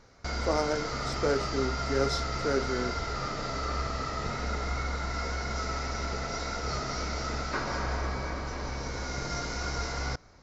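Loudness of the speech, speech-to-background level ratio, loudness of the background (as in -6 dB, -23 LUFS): -32.0 LUFS, 1.0 dB, -33.0 LUFS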